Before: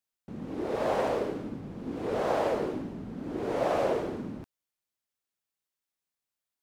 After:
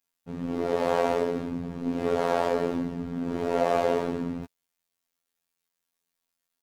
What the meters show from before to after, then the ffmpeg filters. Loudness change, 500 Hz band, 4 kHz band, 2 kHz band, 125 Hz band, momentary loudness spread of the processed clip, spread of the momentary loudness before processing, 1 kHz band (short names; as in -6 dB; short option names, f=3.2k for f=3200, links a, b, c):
+3.5 dB, +3.5 dB, +3.5 dB, +3.5 dB, +4.0 dB, 9 LU, 11 LU, +3.5 dB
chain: -filter_complex "[0:a]aecho=1:1:7.3:0.97,asplit=2[a][b];[b]alimiter=limit=-21.5dB:level=0:latency=1:release=211,volume=0.5dB[c];[a][c]amix=inputs=2:normalize=0,afftfilt=real='hypot(re,im)*cos(PI*b)':imag='0':win_size=2048:overlap=0.75"